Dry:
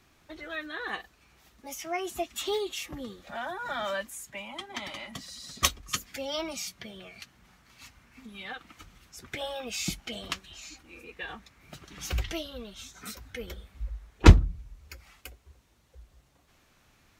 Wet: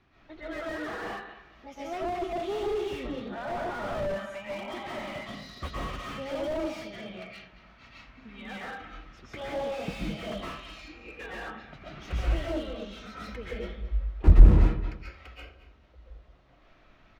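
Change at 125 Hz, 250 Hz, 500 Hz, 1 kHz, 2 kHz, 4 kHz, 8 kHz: +0.5, 0.0, +3.0, 0.0, -2.5, -8.0, -17.5 dB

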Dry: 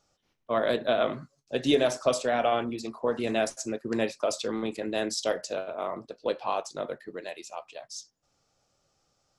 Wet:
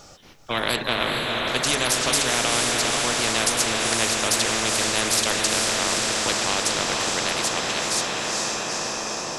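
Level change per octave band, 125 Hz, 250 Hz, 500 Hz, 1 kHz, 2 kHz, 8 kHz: +9.0, +2.0, -0.5, +6.5, +13.5, +19.5 dB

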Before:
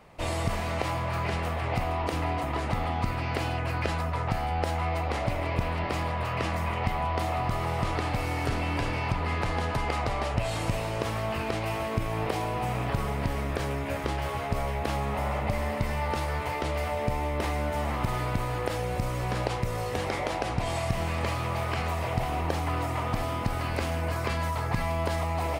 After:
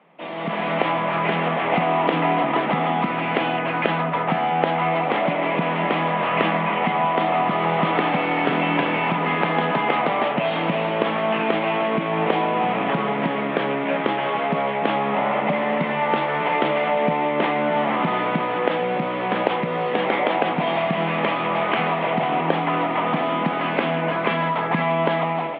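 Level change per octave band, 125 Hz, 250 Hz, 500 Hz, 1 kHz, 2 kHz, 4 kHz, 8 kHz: -1.0 dB, +10.0 dB, +10.0 dB, +10.5 dB, +10.0 dB, +7.5 dB, under -35 dB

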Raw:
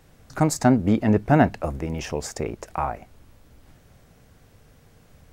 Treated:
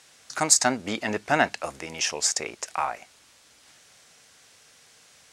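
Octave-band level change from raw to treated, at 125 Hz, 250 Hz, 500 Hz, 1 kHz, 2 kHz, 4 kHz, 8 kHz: -17.0, -12.0, -5.0, -1.5, +4.5, +11.0, +12.0 dB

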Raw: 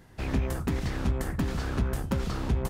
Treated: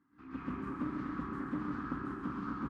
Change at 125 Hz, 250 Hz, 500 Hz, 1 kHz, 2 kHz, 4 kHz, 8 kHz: -16.5 dB, -4.5 dB, -12.5 dB, -3.0 dB, -7.5 dB, under -20 dB, under -25 dB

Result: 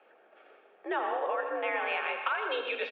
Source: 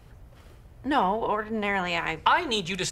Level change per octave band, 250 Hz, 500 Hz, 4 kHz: -14.0, -3.0, -10.0 dB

